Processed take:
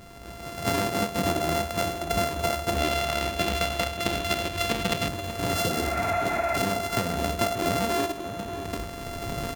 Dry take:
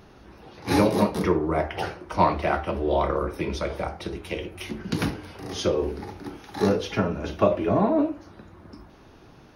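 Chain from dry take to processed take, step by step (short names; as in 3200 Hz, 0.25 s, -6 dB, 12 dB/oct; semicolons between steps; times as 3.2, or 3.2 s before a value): sample sorter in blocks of 64 samples; recorder AGC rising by 11 dB/s; 2.78–5.08 bell 3000 Hz +7.5 dB 1.4 oct; 5.58–6.55 spectral repair 560–2700 Hz; compressor 10:1, threshold -26 dBFS, peak gain reduction 13 dB; outdoor echo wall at 100 m, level -9 dB; gain +3.5 dB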